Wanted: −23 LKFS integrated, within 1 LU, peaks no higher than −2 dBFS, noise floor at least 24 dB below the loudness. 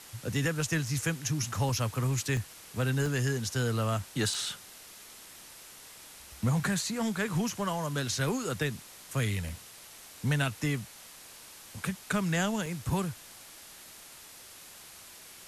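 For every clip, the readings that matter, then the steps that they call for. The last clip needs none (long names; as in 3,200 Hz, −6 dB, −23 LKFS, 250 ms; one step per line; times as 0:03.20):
number of dropouts 7; longest dropout 2.2 ms; background noise floor −50 dBFS; target noise floor −56 dBFS; integrated loudness −31.5 LKFS; sample peak −16.0 dBFS; target loudness −23.0 LKFS
→ repair the gap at 0:00.45/0:01.69/0:02.37/0:03.06/0:04.34/0:09.49/0:12.66, 2.2 ms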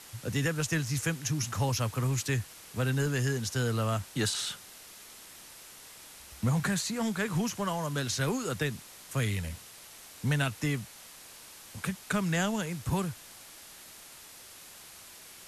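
number of dropouts 0; background noise floor −50 dBFS; target noise floor −56 dBFS
→ noise reduction from a noise print 6 dB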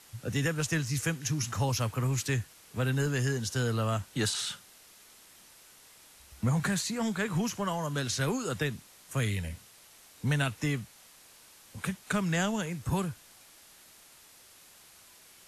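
background noise floor −56 dBFS; integrated loudness −31.5 LKFS; sample peak −16.0 dBFS; target loudness −23.0 LKFS
→ level +8.5 dB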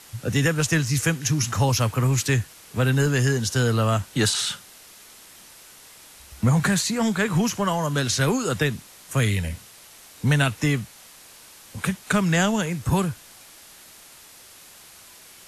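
integrated loudness −23.0 LKFS; sample peak −7.5 dBFS; background noise floor −48 dBFS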